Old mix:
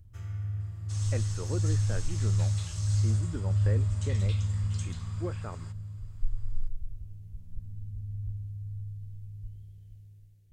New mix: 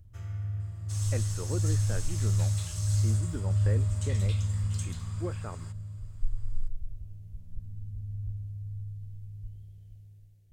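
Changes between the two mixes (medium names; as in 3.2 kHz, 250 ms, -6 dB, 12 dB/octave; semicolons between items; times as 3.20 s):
first sound: add peaking EQ 640 Hz +5.5 dB 0.49 oct; second sound: remove low-pass 6.9 kHz 12 dB/octave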